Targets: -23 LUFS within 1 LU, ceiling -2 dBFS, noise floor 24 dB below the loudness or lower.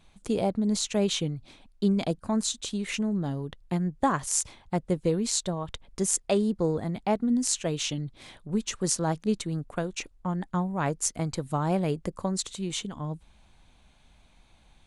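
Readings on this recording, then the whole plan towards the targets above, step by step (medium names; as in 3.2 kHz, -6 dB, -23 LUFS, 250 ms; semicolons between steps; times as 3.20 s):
loudness -29.0 LUFS; peak level -7.0 dBFS; loudness target -23.0 LUFS
-> trim +6 dB; peak limiter -2 dBFS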